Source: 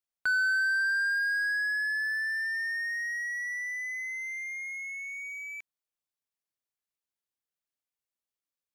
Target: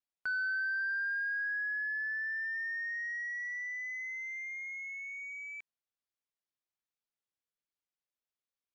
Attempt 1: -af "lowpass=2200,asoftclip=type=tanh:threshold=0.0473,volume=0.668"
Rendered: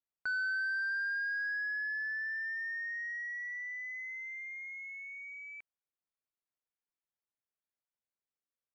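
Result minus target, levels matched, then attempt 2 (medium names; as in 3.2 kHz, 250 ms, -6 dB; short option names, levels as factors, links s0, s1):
4 kHz band +5.0 dB
-af "lowpass=5500,asoftclip=type=tanh:threshold=0.0473,volume=0.668"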